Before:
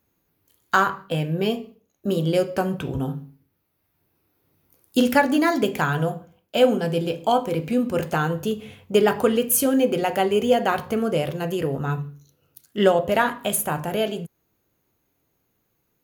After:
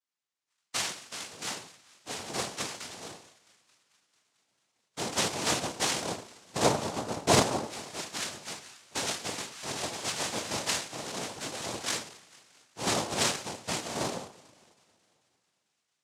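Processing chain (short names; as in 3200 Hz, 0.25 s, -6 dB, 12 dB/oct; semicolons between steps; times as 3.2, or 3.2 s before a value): cycle switcher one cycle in 3, muted; AGC gain up to 10 dB; LFO band-pass saw down 0.13 Hz 740–3000 Hz; thinning echo 0.222 s, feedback 78%, high-pass 770 Hz, level -22 dB; two-slope reverb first 0.34 s, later 2.2 s, from -27 dB, DRR -3 dB; noise vocoder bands 2; gain -9 dB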